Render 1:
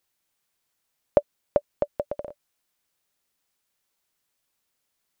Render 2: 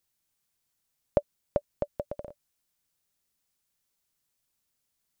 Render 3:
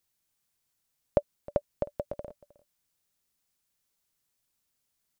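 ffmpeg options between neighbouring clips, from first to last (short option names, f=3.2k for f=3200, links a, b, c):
-af "bass=f=250:g=8,treble=f=4k:g=5,volume=-6dB"
-af "aecho=1:1:312:0.0944"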